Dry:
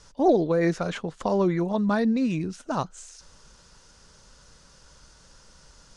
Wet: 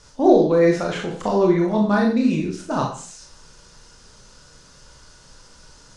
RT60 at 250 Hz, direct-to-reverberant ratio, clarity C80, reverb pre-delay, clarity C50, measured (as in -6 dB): 0.50 s, -0.5 dB, 9.5 dB, 20 ms, 5.5 dB